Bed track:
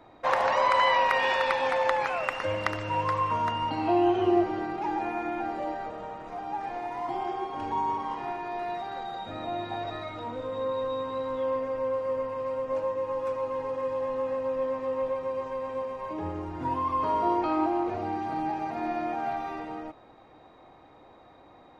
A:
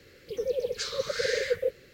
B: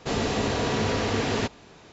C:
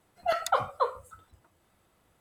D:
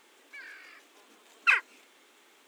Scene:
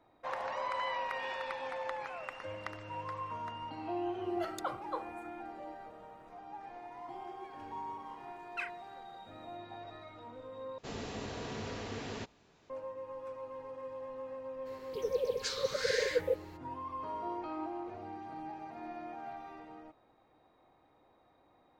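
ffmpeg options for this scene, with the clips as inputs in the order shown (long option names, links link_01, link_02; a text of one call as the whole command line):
ffmpeg -i bed.wav -i cue0.wav -i cue1.wav -i cue2.wav -i cue3.wav -filter_complex "[0:a]volume=-13.5dB,asplit=2[link_01][link_02];[link_01]atrim=end=10.784[link_03];[2:a]atrim=end=1.92,asetpts=PTS-STARTPTS,volume=-15.5dB[link_04];[link_02]atrim=start=12.696[link_05];[3:a]atrim=end=2.2,asetpts=PTS-STARTPTS,volume=-12dB,afade=type=in:duration=0.004:curve=hsin,afade=type=out:start_time=2.196:duration=0.004:curve=hsin,adelay=4120[link_06];[4:a]atrim=end=2.47,asetpts=PTS-STARTPTS,volume=-17dB,afade=type=in:duration=0.004:curve=hsin,afade=type=out:start_time=2.466:duration=0.004:curve=hsin,adelay=7100[link_07];[1:a]atrim=end=1.93,asetpts=PTS-STARTPTS,volume=-3.5dB,afade=type=in:duration=0.02,afade=type=out:start_time=1.91:duration=0.02,adelay=14650[link_08];[link_03][link_04]acrossfade=duration=0.004:curve1=hsin:curve2=hsin[link_09];[link_09][link_05]acrossfade=duration=0.004:curve1=hsin:curve2=hsin[link_10];[link_10][link_06][link_07][link_08]amix=inputs=4:normalize=0" out.wav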